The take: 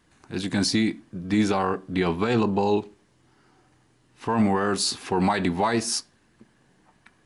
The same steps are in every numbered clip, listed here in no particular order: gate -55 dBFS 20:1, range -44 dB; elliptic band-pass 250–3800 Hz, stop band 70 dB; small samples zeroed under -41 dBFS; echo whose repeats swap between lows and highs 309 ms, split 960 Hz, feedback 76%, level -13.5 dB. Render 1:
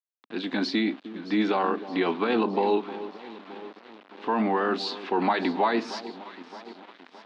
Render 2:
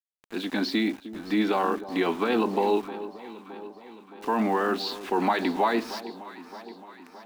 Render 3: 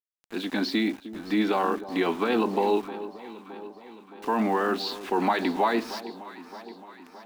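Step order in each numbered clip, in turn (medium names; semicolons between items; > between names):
echo whose repeats swap between lows and highs > gate > small samples zeroed > elliptic band-pass; gate > elliptic band-pass > small samples zeroed > echo whose repeats swap between lows and highs; elliptic band-pass > gate > small samples zeroed > echo whose repeats swap between lows and highs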